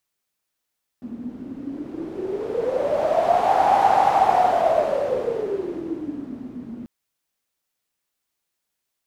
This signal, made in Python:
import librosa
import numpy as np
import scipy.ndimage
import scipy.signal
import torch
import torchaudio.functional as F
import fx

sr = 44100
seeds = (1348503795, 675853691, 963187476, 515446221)

y = fx.wind(sr, seeds[0], length_s=5.84, low_hz=240.0, high_hz=800.0, q=11.0, gusts=1, swing_db=18.0)